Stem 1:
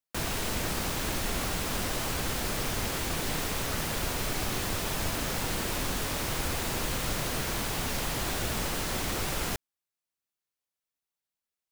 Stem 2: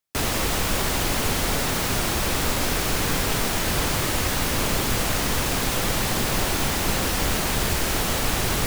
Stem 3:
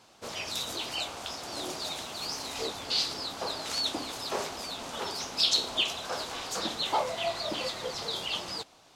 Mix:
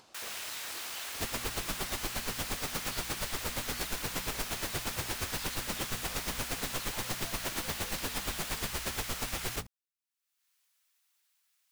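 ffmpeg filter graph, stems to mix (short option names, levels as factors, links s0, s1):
-filter_complex "[0:a]highpass=1300,volume=0.531[s0];[1:a]aeval=exprs='val(0)*pow(10,-30*(0.5-0.5*cos(2*PI*8.5*n/s))/20)':c=same,adelay=1000,volume=0.708[s1];[2:a]acompressor=threshold=0.00631:ratio=2.5,volume=0.531[s2];[s1][s2]amix=inputs=2:normalize=0,bandreject=f=60:t=h:w=6,bandreject=f=120:t=h:w=6,bandreject=f=180:t=h:w=6,bandreject=f=240:t=h:w=6,acompressor=threshold=0.0251:ratio=6,volume=1[s3];[s0][s3]amix=inputs=2:normalize=0,acompressor=mode=upward:threshold=0.00158:ratio=2.5"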